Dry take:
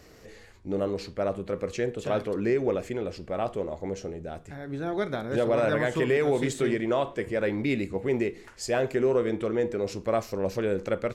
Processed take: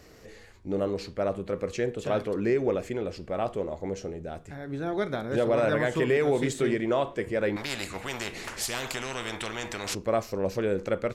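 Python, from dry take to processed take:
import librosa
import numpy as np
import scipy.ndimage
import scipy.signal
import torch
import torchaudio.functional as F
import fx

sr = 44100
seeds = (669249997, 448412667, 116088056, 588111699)

y = fx.spectral_comp(x, sr, ratio=4.0, at=(7.56, 9.95))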